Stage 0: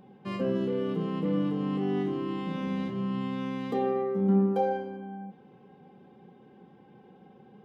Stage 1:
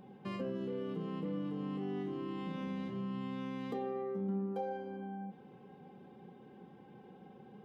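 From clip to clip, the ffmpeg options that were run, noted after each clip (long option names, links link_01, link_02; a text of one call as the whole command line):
ffmpeg -i in.wav -af "acompressor=threshold=-39dB:ratio=2.5,volume=-1dB" out.wav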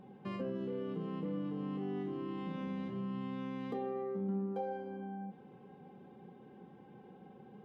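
ffmpeg -i in.wav -af "highshelf=frequency=4300:gain=-8.5" out.wav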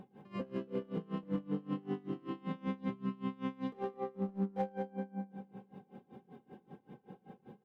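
ffmpeg -i in.wav -af "volume=32dB,asoftclip=hard,volume=-32dB,aecho=1:1:210|420|630|840|1050|1260:0.355|0.181|0.0923|0.0471|0.024|0.0122,aeval=exprs='val(0)*pow(10,-25*(0.5-0.5*cos(2*PI*5.2*n/s))/20)':channel_layout=same,volume=5dB" out.wav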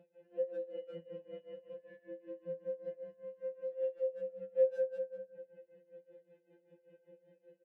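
ffmpeg -i in.wav -filter_complex "[0:a]asplit=3[link_01][link_02][link_03];[link_01]bandpass=frequency=530:width_type=q:width=8,volume=0dB[link_04];[link_02]bandpass=frequency=1840:width_type=q:width=8,volume=-6dB[link_05];[link_03]bandpass=frequency=2480:width_type=q:width=8,volume=-9dB[link_06];[link_04][link_05][link_06]amix=inputs=3:normalize=0,asplit=2[link_07][link_08];[link_08]adelay=150,highpass=300,lowpass=3400,asoftclip=type=hard:threshold=-39.5dB,volume=-7dB[link_09];[link_07][link_09]amix=inputs=2:normalize=0,afftfilt=real='re*2.83*eq(mod(b,8),0)':imag='im*2.83*eq(mod(b,8),0)':win_size=2048:overlap=0.75,volume=7.5dB" out.wav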